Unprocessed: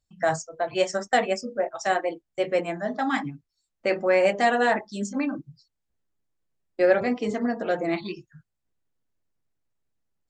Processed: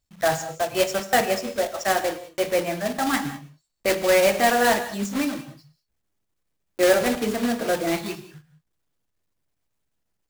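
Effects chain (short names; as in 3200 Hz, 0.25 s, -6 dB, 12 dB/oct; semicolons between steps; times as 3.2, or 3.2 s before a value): block floating point 3-bit; non-linear reverb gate 0.22 s flat, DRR 10.5 dB; gain +1.5 dB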